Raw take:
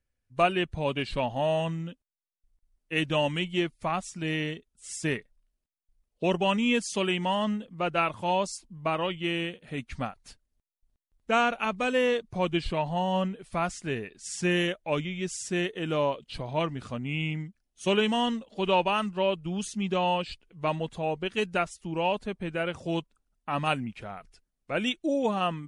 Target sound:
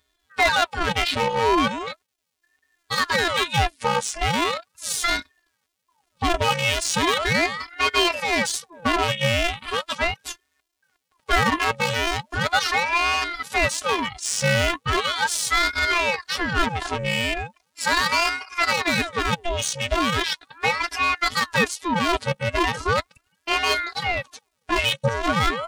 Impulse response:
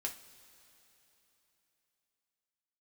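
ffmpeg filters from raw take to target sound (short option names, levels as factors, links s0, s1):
-filter_complex "[0:a]asplit=2[s0][s1];[s1]highpass=f=720:p=1,volume=28.2,asoftclip=type=tanh:threshold=0.266[s2];[s0][s2]amix=inputs=2:normalize=0,lowpass=f=5200:p=1,volume=0.501,afftfilt=real='hypot(re,im)*cos(PI*b)':imag='0':win_size=512:overlap=0.75,aeval=exprs='val(0)*sin(2*PI*1000*n/s+1000*0.8/0.38*sin(2*PI*0.38*n/s))':c=same,volume=1.68"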